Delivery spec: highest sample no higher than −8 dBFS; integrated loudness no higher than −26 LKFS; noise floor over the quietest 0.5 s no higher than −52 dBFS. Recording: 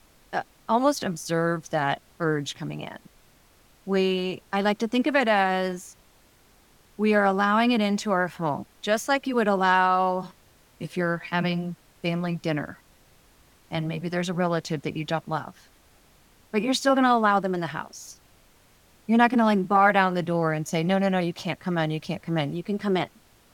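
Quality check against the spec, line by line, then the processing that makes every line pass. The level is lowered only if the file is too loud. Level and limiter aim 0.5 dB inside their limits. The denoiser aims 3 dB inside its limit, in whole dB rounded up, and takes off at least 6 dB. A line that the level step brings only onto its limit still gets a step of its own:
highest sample −5.5 dBFS: out of spec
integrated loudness −25.0 LKFS: out of spec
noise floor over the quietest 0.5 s −58 dBFS: in spec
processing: level −1.5 dB
brickwall limiter −8.5 dBFS

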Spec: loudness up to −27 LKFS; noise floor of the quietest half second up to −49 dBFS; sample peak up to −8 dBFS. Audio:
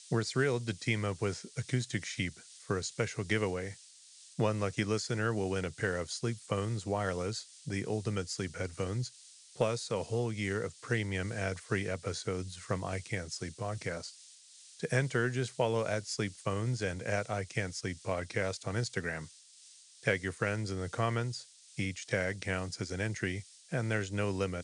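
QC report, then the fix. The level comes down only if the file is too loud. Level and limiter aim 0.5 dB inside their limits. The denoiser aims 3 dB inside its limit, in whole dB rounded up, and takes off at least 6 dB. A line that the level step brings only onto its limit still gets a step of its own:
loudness −35.0 LKFS: in spec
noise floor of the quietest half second −58 dBFS: in spec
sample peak −16.5 dBFS: in spec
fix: no processing needed

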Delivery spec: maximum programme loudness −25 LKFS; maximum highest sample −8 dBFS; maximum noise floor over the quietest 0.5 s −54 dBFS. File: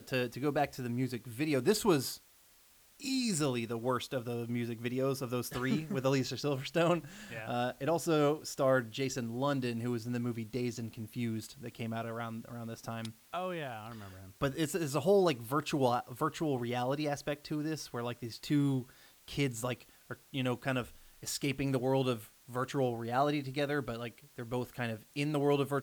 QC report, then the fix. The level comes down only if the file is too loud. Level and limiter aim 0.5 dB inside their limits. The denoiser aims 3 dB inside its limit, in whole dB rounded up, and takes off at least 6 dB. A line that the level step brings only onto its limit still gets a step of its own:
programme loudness −34.5 LKFS: in spec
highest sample −16.0 dBFS: in spec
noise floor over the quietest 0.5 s −63 dBFS: in spec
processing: no processing needed

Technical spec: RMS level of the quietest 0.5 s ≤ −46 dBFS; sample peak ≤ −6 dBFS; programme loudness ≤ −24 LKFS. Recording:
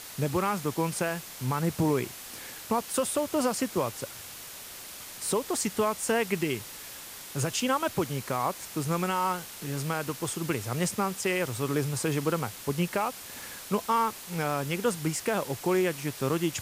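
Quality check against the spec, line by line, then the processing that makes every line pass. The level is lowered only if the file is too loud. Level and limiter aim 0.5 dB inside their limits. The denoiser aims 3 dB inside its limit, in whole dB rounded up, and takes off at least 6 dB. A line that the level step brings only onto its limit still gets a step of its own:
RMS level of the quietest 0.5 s −43 dBFS: out of spec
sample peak −15.0 dBFS: in spec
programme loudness −29.5 LKFS: in spec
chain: broadband denoise 6 dB, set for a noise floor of −43 dBFS

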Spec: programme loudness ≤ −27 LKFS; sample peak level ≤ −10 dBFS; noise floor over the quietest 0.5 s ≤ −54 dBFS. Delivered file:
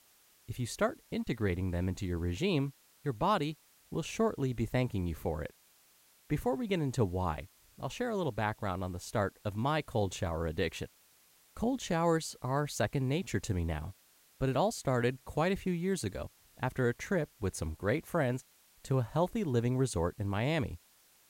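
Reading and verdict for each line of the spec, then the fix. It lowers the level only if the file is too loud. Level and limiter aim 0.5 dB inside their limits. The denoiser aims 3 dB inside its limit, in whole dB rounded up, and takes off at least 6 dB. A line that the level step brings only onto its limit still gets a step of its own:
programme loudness −34.0 LKFS: in spec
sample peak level −16.5 dBFS: in spec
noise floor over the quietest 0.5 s −65 dBFS: in spec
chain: no processing needed

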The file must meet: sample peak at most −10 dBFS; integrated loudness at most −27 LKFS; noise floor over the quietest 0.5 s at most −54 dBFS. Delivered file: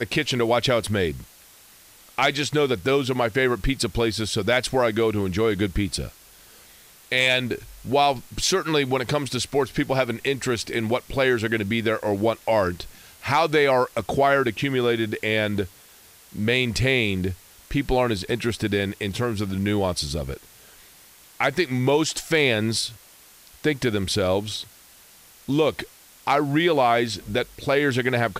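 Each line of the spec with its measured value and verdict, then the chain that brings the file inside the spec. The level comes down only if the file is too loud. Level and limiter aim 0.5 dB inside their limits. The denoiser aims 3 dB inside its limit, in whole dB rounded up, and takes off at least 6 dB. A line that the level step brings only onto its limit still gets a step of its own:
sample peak −7.0 dBFS: out of spec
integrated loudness −23.0 LKFS: out of spec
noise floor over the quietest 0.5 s −51 dBFS: out of spec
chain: level −4.5 dB

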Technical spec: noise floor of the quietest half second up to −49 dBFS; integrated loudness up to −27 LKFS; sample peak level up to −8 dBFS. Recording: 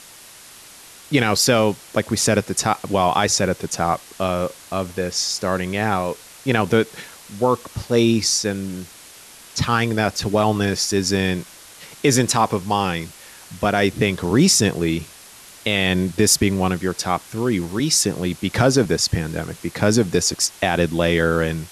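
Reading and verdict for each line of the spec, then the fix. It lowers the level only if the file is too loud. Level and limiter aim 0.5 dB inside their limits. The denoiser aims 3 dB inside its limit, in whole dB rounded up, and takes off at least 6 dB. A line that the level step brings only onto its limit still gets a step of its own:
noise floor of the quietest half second −43 dBFS: out of spec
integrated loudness −20.0 LKFS: out of spec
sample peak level −4.5 dBFS: out of spec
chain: level −7.5 dB

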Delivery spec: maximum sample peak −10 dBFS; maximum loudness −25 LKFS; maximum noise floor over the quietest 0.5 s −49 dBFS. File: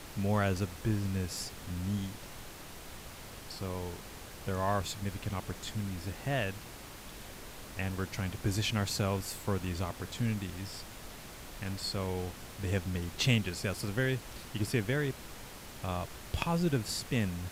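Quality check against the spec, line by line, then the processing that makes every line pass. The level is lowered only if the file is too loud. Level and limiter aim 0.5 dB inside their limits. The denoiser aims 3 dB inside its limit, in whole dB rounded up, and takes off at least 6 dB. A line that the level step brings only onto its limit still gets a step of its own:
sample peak −14.5 dBFS: in spec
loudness −35.0 LKFS: in spec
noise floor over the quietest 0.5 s −47 dBFS: out of spec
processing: broadband denoise 6 dB, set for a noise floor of −47 dBFS

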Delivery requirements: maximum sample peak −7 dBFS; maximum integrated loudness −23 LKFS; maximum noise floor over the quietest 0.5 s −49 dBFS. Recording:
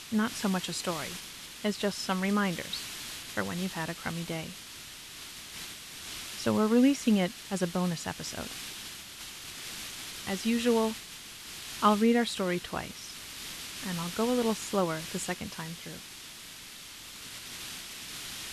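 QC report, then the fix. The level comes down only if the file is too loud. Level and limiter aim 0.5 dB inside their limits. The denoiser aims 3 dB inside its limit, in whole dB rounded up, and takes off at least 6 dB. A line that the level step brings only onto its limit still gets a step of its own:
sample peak −12.0 dBFS: in spec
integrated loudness −32.0 LKFS: in spec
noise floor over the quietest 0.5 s −46 dBFS: out of spec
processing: broadband denoise 6 dB, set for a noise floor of −46 dBFS

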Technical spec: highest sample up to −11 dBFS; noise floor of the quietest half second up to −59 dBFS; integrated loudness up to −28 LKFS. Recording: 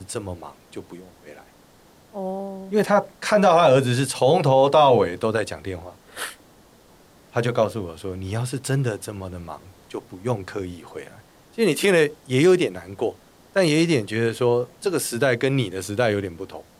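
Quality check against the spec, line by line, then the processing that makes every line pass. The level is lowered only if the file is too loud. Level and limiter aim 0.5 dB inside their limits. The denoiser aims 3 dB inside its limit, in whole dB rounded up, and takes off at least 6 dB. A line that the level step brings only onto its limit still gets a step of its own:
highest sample −6.0 dBFS: out of spec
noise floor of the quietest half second −53 dBFS: out of spec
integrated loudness −21.5 LKFS: out of spec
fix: level −7 dB

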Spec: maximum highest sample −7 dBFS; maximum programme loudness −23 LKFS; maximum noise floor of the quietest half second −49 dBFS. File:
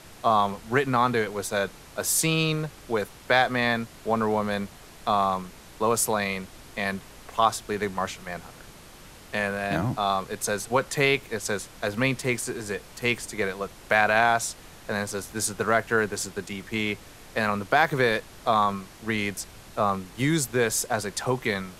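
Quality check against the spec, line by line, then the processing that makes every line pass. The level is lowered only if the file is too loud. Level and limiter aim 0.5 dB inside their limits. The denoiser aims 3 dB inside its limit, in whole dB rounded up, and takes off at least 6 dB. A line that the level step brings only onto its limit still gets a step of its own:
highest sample −5.5 dBFS: out of spec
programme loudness −26.0 LKFS: in spec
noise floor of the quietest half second −47 dBFS: out of spec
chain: broadband denoise 6 dB, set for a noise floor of −47 dBFS
brickwall limiter −7.5 dBFS

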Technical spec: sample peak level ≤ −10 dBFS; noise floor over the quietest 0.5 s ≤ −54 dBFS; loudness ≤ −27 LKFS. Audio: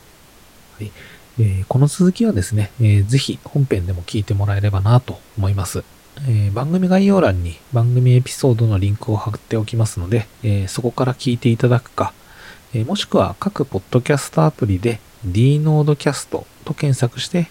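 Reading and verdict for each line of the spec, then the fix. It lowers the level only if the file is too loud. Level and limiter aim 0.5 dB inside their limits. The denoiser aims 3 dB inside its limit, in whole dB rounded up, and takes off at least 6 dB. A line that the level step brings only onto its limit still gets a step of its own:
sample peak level −2.5 dBFS: out of spec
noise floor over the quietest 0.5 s −46 dBFS: out of spec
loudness −18.0 LKFS: out of spec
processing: level −9.5 dB

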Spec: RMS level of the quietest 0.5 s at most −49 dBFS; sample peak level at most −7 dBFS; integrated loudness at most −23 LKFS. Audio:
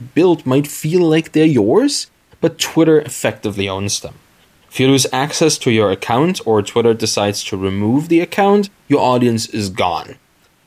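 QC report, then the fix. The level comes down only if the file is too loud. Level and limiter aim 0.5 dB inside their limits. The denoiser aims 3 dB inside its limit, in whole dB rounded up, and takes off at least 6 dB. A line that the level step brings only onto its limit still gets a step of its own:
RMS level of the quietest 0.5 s −54 dBFS: in spec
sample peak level −2.5 dBFS: out of spec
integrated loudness −15.0 LKFS: out of spec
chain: level −8.5 dB

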